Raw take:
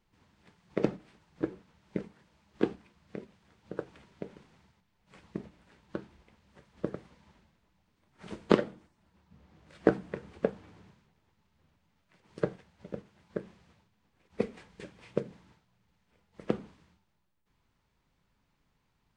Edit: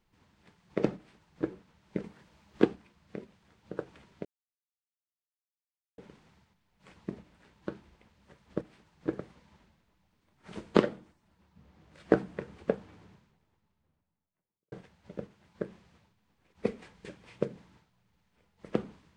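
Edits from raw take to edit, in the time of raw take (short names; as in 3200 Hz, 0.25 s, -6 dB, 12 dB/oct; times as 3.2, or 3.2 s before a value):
0.96–1.48 copy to 6.88
2.04–2.65 gain +4.5 dB
4.25 insert silence 1.73 s
10.71–12.47 studio fade out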